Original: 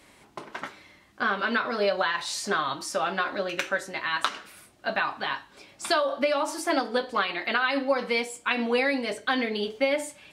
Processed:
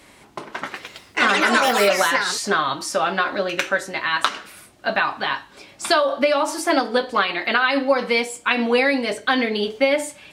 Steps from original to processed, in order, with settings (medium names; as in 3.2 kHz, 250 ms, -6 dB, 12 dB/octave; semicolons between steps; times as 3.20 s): 0.60–2.82 s: ever faster or slower copies 115 ms, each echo +5 st, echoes 3; trim +6.5 dB